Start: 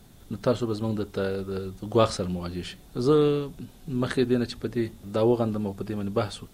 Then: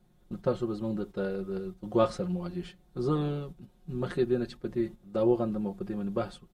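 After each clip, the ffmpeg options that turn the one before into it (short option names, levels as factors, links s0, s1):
-af "agate=range=0.398:threshold=0.0158:ratio=16:detection=peak,highshelf=f=2200:g=-10,aecho=1:1:5.6:0.73,volume=0.531"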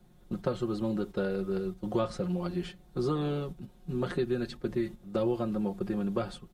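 -filter_complex "[0:a]acrossover=split=220|1300[s0][s1][s2];[s0]acompressor=threshold=0.00891:ratio=4[s3];[s1]acompressor=threshold=0.0178:ratio=4[s4];[s2]acompressor=threshold=0.00447:ratio=4[s5];[s3][s4][s5]amix=inputs=3:normalize=0,volume=1.78"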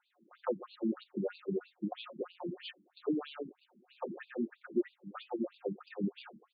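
-af "afftfilt=real='re*between(b*sr/1024,240*pow(3500/240,0.5+0.5*sin(2*PI*3.1*pts/sr))/1.41,240*pow(3500/240,0.5+0.5*sin(2*PI*3.1*pts/sr))*1.41)':imag='im*between(b*sr/1024,240*pow(3500/240,0.5+0.5*sin(2*PI*3.1*pts/sr))/1.41,240*pow(3500/240,0.5+0.5*sin(2*PI*3.1*pts/sr))*1.41)':win_size=1024:overlap=0.75,volume=1.26"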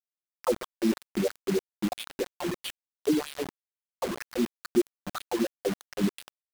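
-af "acrusher=bits=6:mix=0:aa=0.000001,volume=2.51"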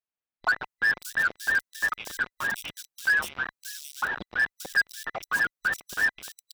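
-filter_complex "[0:a]afftfilt=real='real(if(between(b,1,1012),(2*floor((b-1)/92)+1)*92-b,b),0)':imag='imag(if(between(b,1,1012),(2*floor((b-1)/92)+1)*92-b,b),0)*if(between(b,1,1012),-1,1)':win_size=2048:overlap=0.75,acrossover=split=3500[s0][s1];[s1]adelay=580[s2];[s0][s2]amix=inputs=2:normalize=0,volume=10.6,asoftclip=hard,volume=0.0944,volume=1.41"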